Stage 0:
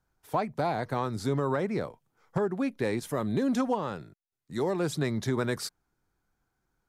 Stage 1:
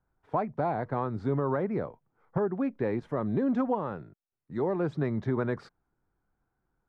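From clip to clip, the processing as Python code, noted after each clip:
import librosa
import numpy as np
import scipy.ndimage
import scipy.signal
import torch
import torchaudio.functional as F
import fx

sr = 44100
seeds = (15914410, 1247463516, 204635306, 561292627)

y = scipy.signal.sosfilt(scipy.signal.butter(2, 1500.0, 'lowpass', fs=sr, output='sos'), x)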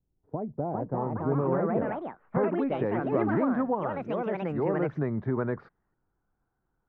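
y = fx.filter_sweep_lowpass(x, sr, from_hz=350.0, to_hz=1600.0, start_s=0.09, end_s=2.26, q=0.88)
y = fx.echo_pitch(y, sr, ms=472, semitones=4, count=2, db_per_echo=-3.0)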